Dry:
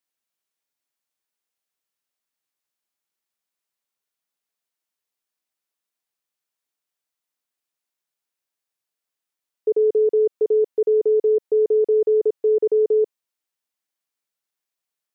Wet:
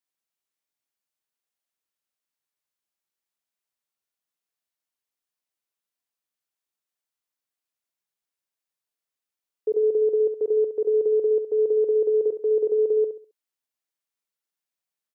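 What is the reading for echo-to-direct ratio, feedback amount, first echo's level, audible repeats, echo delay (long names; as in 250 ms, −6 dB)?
−8.5 dB, 31%, −9.0 dB, 3, 67 ms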